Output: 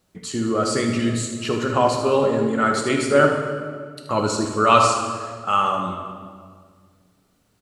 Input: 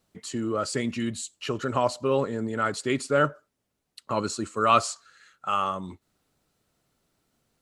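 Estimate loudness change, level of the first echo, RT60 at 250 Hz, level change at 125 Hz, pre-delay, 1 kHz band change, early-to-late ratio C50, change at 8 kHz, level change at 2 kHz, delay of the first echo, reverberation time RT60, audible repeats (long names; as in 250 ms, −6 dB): +6.5 dB, −10.0 dB, 2.3 s, +7.0 dB, 4 ms, +7.0 dB, 3.0 dB, +6.5 dB, +7.0 dB, 77 ms, 1.9 s, 1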